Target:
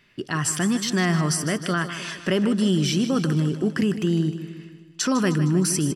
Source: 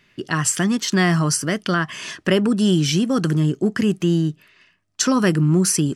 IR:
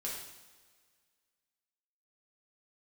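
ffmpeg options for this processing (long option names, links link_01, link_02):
-filter_complex "[0:a]bandreject=frequency=6600:width=11,asplit=2[link_01][link_02];[link_02]alimiter=limit=-15dB:level=0:latency=1:release=25,volume=2.5dB[link_03];[link_01][link_03]amix=inputs=2:normalize=0,aecho=1:1:154|308|462|616|770|924:0.266|0.146|0.0805|0.0443|0.0243|0.0134,volume=-9dB"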